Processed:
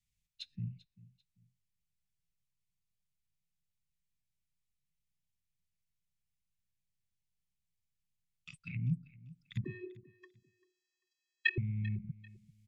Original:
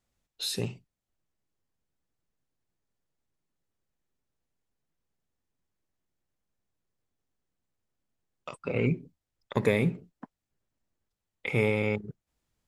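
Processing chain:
Chebyshev band-stop filter 170–2,200 Hz, order 3
treble cut that deepens with the level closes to 430 Hz, closed at −31 dBFS
speech leveller 0.5 s
0:09.64–0:11.58: channel vocoder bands 32, square 365 Hz
repeating echo 392 ms, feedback 29%, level −20 dB

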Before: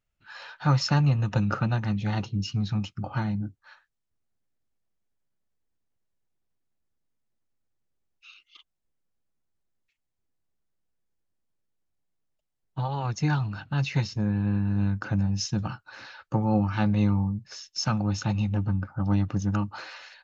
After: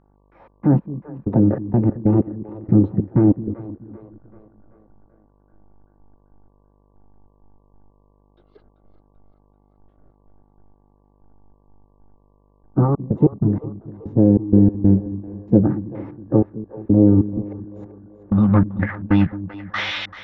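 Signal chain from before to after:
mu-law and A-law mismatch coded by mu
high-shelf EQ 4,800 Hz −6 dB
in parallel at +2 dB: brickwall limiter −21.5 dBFS, peak gain reduction 11.5 dB
on the sum: automatic gain control gain up to 12 dB
gate pattern "x.x.x...x" 95 BPM −60 dB
low-pass filter sweep 360 Hz → 2,700 Hz, 0:17.59–0:19.38
hum with harmonics 50 Hz, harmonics 23, −55 dBFS −5 dB per octave
on a send: echo with a time of its own for lows and highs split 320 Hz, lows 215 ms, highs 387 ms, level −14.5 dB
on the sum: formants moved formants +5 semitones
high-frequency loss of the air 110 metres
level −3.5 dB

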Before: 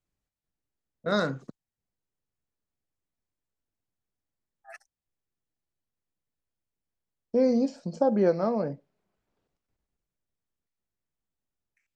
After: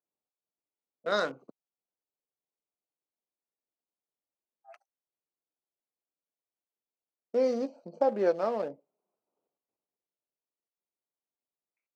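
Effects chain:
adaptive Wiener filter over 25 samples
high-pass filter 430 Hz 12 dB per octave

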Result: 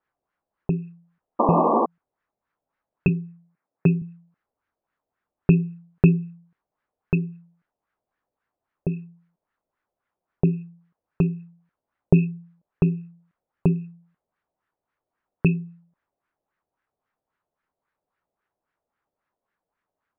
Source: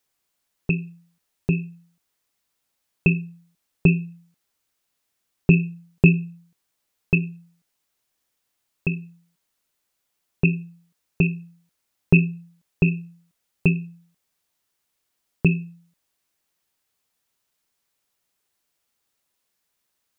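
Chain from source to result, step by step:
auto-filter low-pass sine 3.7 Hz 600–1,700 Hz
0:01.39–0:01.86: sound drawn into the spectrogram noise 210–1,200 Hz −18 dBFS
0:03.08–0:04.02: elliptic band-pass filter 120–2,300 Hz
level −1 dB

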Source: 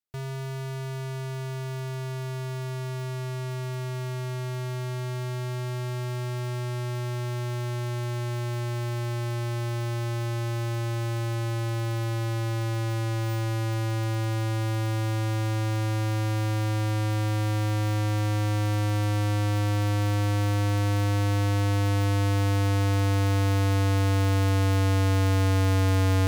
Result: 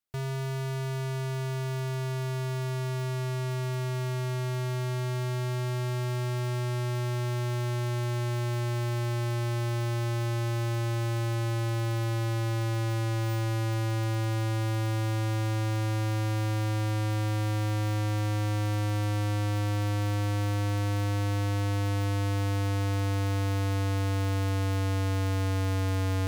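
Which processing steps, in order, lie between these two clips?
downward compressor, threshold −30 dBFS, peak gain reduction 7.5 dB
level +1.5 dB

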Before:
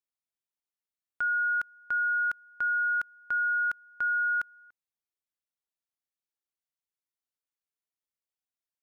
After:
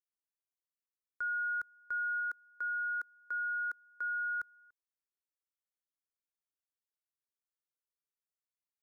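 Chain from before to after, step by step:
0:02.20–0:04.40: elliptic high-pass filter 210 Hz
phaser with its sweep stopped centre 760 Hz, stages 6
level −7 dB

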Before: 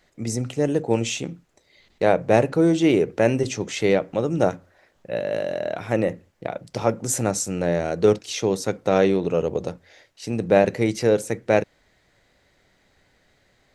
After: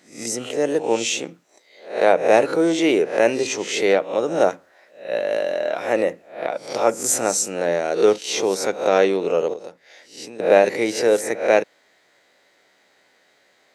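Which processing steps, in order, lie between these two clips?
peak hold with a rise ahead of every peak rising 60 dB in 0.42 s
0:09.53–0:10.40: downward compressor 4 to 1, threshold −34 dBFS, peak gain reduction 13.5 dB
high-pass filter 370 Hz 12 dB per octave
level +3 dB

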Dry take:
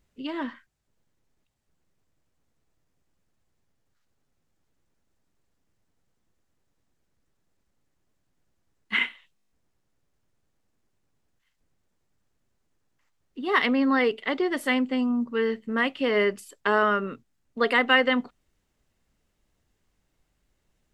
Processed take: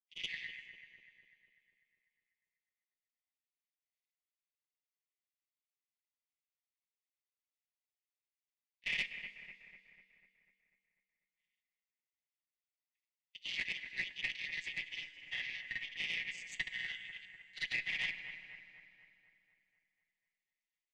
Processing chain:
channel vocoder with a chord as carrier major triad, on B2
noise gate with hold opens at −45 dBFS
Butterworth high-pass 1,900 Hz 96 dB per octave
downward compressor 3 to 1, threshold −55 dBFS, peak gain reduction 19 dB
tube saturation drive 41 dB, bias 0.4
granular cloud, pitch spread up and down by 0 semitones
bucket-brigade delay 247 ms, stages 4,096, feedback 57%, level −10 dB
convolution reverb RT60 2.5 s, pre-delay 17 ms, DRR 15 dB
level +17.5 dB

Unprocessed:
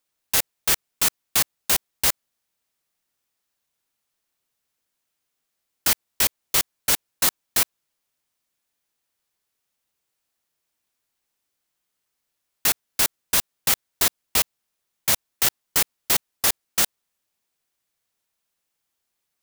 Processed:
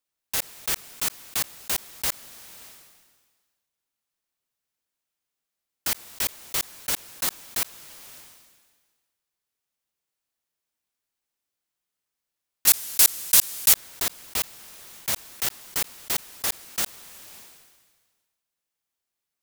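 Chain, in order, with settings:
0:12.67–0:13.73: parametric band 12,000 Hz +13 dB 2.6 octaves
level that may fall only so fast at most 38 dB per second
level −6.5 dB

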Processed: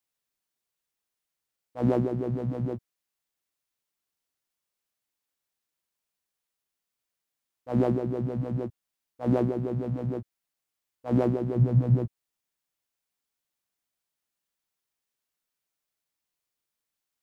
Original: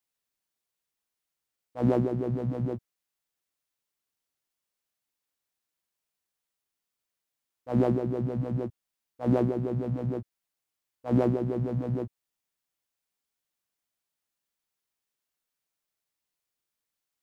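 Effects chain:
0:11.55–0:12.06: parametric band 120 Hz +10 dB 1.2 octaves

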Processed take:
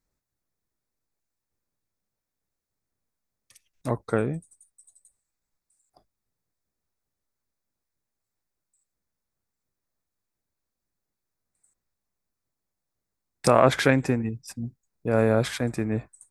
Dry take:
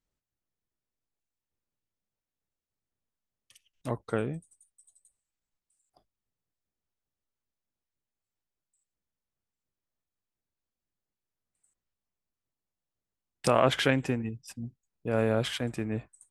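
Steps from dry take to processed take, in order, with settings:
parametric band 3,000 Hz −14 dB 0.29 octaves
level +5.5 dB

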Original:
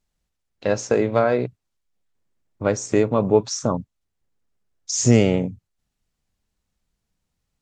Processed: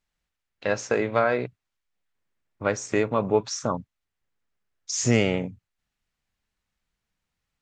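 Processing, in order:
parametric band 1,900 Hz +9.5 dB 2.4 octaves
level −7 dB

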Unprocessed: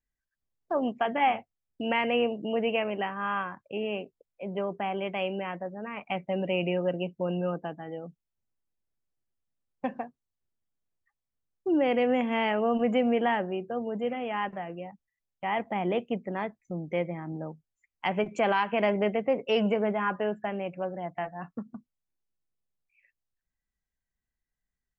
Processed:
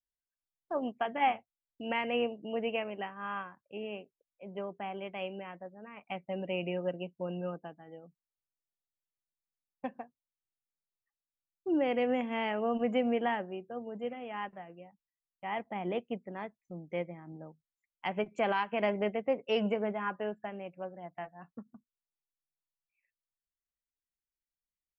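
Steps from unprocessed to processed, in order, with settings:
expander for the loud parts 1.5 to 1, over −46 dBFS
level −3 dB

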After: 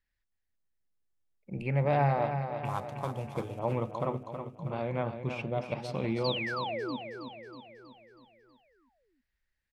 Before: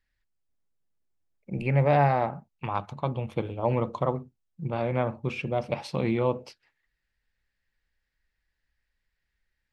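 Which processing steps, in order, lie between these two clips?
0:02.65–0:03.59: variable-slope delta modulation 64 kbit/s
0:06.24–0:06.97: sound drawn into the spectrogram fall 230–4,900 Hz −30 dBFS
repeating echo 321 ms, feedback 55%, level −8 dB
level −5.5 dB

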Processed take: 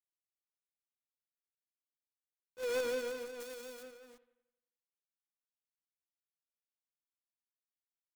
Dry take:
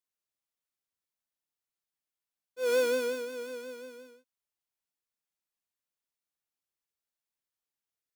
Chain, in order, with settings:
low-pass filter 8,000 Hz 24 dB per octave
log-companded quantiser 4 bits
0:03.40–0:03.83: high-shelf EQ 4,100 Hz +9.5 dB
bucket-brigade delay 88 ms, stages 2,048, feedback 51%, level −16 dB
level −8 dB

